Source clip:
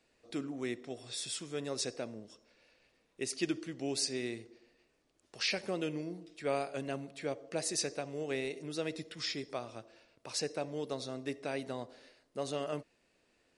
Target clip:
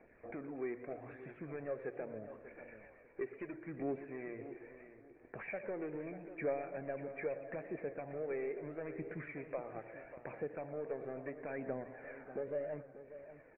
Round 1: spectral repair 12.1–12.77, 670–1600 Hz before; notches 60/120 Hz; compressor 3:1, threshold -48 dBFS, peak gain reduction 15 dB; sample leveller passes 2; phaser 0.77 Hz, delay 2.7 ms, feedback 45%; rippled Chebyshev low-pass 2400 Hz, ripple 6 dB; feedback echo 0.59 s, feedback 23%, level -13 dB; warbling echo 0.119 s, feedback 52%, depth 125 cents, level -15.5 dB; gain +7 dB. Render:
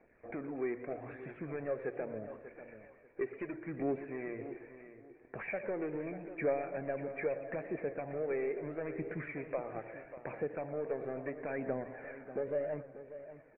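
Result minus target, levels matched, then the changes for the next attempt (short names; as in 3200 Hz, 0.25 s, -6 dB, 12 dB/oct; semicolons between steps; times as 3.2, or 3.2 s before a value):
compressor: peak gain reduction -4.5 dB
change: compressor 3:1, threshold -54.5 dBFS, peak gain reduction 19 dB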